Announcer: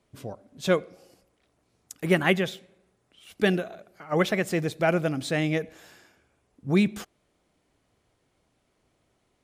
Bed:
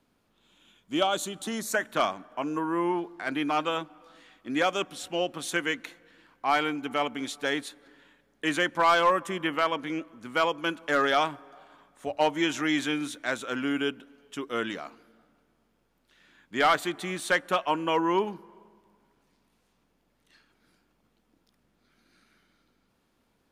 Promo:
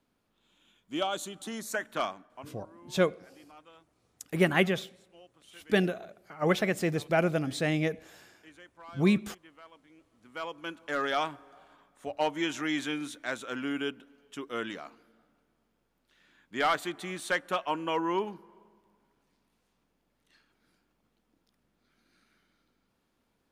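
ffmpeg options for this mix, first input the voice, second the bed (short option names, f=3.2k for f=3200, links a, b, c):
-filter_complex "[0:a]adelay=2300,volume=-2.5dB[a];[1:a]volume=17dB,afade=t=out:st=2.02:d=0.56:silence=0.0841395,afade=t=in:st=9.98:d=1.31:silence=0.0749894[b];[a][b]amix=inputs=2:normalize=0"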